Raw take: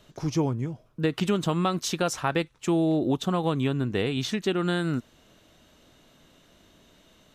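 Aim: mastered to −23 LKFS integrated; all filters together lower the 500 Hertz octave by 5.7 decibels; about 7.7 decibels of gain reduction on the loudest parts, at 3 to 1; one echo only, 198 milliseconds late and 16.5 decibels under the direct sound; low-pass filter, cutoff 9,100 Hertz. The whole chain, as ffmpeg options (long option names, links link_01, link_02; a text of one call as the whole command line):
ffmpeg -i in.wav -af "lowpass=9100,equalizer=frequency=500:width_type=o:gain=-8,acompressor=threshold=-33dB:ratio=3,aecho=1:1:198:0.15,volume=12.5dB" out.wav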